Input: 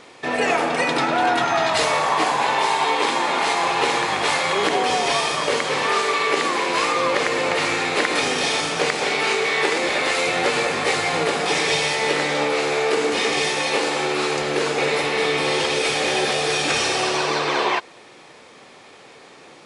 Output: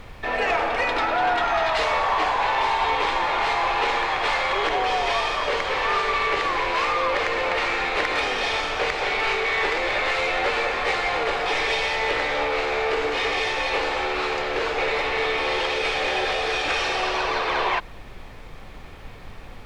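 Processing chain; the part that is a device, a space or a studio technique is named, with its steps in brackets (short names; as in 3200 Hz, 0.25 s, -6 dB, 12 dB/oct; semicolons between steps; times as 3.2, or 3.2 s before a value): aircraft cabin announcement (BPF 470–3400 Hz; soft clip -13.5 dBFS, distortion -21 dB; brown noise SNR 15 dB)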